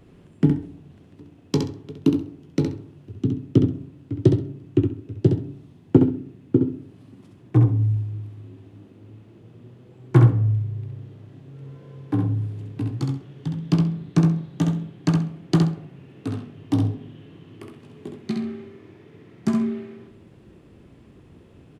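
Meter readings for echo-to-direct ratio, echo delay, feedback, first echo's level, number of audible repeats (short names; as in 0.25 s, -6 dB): -5.0 dB, 66 ms, 20%, -5.0 dB, 3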